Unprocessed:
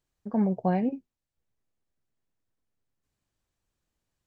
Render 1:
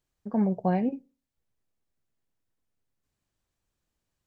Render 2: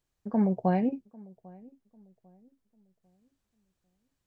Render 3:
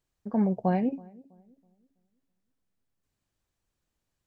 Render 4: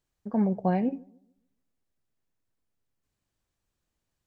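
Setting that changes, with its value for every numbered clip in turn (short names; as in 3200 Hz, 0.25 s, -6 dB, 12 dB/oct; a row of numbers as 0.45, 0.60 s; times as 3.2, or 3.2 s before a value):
darkening echo, time: 61, 797, 326, 145 ms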